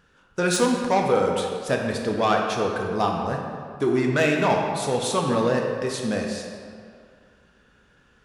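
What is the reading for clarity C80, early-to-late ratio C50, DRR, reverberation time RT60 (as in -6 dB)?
4.0 dB, 2.5 dB, 0.5 dB, 2.2 s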